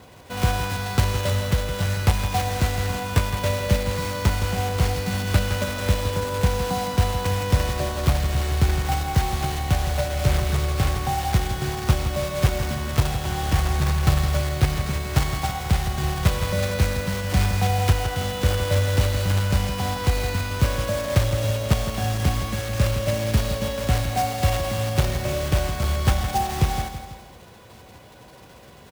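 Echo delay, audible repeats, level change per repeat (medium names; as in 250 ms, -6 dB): 164 ms, 3, -6.0 dB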